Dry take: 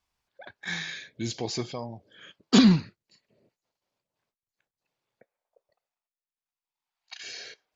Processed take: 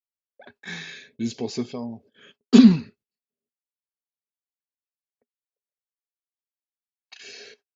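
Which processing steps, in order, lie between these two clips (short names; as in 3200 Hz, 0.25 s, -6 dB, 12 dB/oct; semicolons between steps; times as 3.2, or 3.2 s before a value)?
gate -54 dBFS, range -32 dB; small resonant body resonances 240/410/2600 Hz, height 13 dB, ringing for 70 ms; gain -3 dB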